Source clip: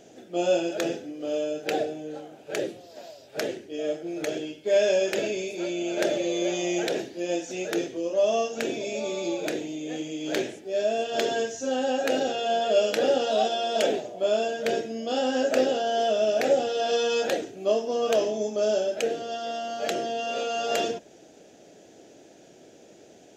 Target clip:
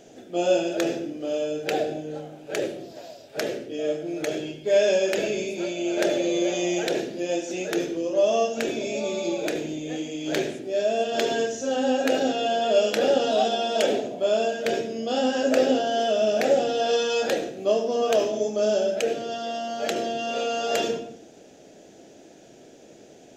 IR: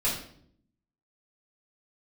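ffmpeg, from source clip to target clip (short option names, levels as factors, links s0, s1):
-filter_complex "[0:a]asplit=2[s0][s1];[1:a]atrim=start_sample=2205,lowshelf=f=420:g=8.5,adelay=70[s2];[s1][s2]afir=irnorm=-1:irlink=0,volume=0.0841[s3];[s0][s3]amix=inputs=2:normalize=0,volume=1.19"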